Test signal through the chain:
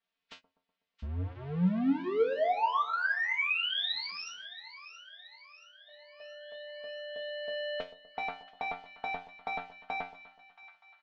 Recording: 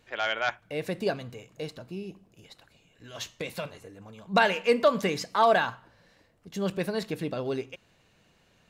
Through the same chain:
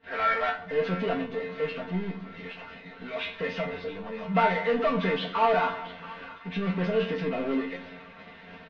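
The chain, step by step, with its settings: knee-point frequency compression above 1.2 kHz 1.5:1; bass shelf 69 Hz -12 dB; power-law waveshaper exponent 0.5; feedback comb 90 Hz, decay 0.26 s, harmonics all, mix 90%; gate -46 dBFS, range -21 dB; low-pass 3.6 kHz 24 dB/octave; comb 4.4 ms, depth 97%; on a send: two-band feedback delay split 1 kHz, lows 124 ms, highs 676 ms, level -15 dB; on the sum: trim -2 dB

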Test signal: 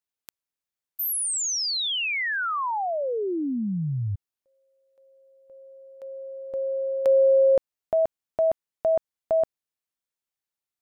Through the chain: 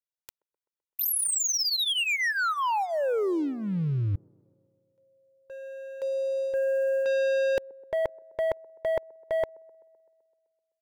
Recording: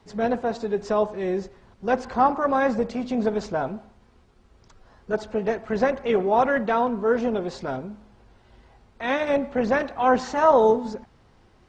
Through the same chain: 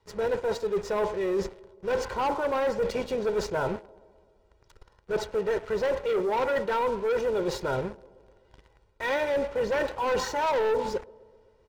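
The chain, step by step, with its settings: comb 2.1 ms, depth 77%; waveshaping leveller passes 3; reverse; compression 5:1, threshold -19 dBFS; reverse; feedback echo behind a band-pass 128 ms, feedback 65%, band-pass 440 Hz, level -22 dB; trim -6.5 dB

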